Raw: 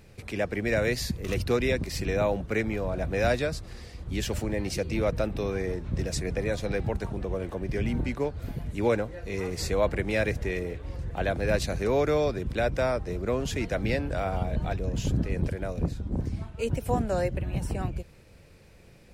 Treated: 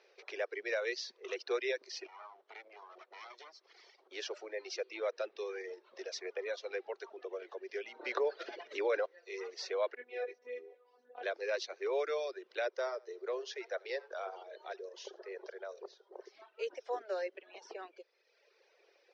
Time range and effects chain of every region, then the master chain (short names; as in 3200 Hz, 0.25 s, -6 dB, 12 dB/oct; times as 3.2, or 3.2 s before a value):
2.06–4.11 minimum comb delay 0.93 ms + compressor 10:1, threshold -37 dBFS
8.01–9.06 air absorption 73 m + fast leveller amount 100%
9.95–11.23 tilt -3.5 dB/oct + robotiser 246 Hz + detuned doubles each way 12 cents
12.7–16.35 brick-wall FIR band-pass 340–7200 Hz + bell 2500 Hz -6.5 dB 0.5 oct + echo 83 ms -14.5 dB
whole clip: dynamic EQ 780 Hz, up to -4 dB, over -41 dBFS, Q 1.6; Chebyshev band-pass 380–5900 Hz, order 5; reverb removal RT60 1.2 s; gain -5.5 dB